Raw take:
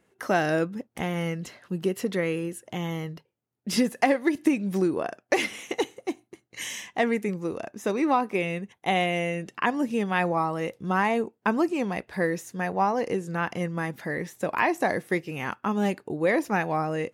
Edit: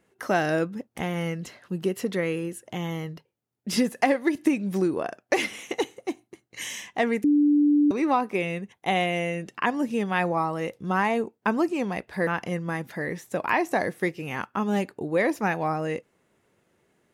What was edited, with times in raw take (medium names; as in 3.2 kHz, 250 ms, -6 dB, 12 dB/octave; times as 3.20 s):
7.24–7.91 s: bleep 293 Hz -16 dBFS
12.27–13.36 s: delete